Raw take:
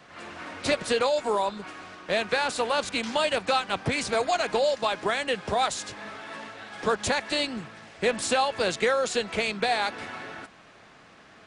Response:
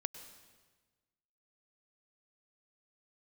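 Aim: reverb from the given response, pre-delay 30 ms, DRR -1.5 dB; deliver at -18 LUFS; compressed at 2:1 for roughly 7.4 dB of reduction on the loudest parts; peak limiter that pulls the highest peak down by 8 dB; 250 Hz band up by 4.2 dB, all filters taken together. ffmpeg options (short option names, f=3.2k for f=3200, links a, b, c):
-filter_complex "[0:a]equalizer=f=250:t=o:g=5,acompressor=threshold=-33dB:ratio=2,alimiter=level_in=1.5dB:limit=-24dB:level=0:latency=1,volume=-1.5dB,asplit=2[a][b];[1:a]atrim=start_sample=2205,adelay=30[c];[b][c]afir=irnorm=-1:irlink=0,volume=2.5dB[d];[a][d]amix=inputs=2:normalize=0,volume=13.5dB"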